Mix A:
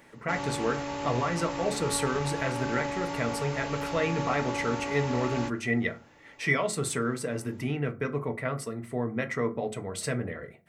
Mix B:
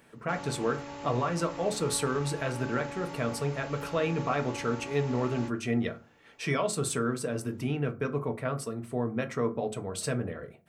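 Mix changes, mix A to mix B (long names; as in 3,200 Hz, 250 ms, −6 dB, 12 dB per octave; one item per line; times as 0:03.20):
speech: add parametric band 2,000 Hz −13 dB 0.21 octaves
background −7.5 dB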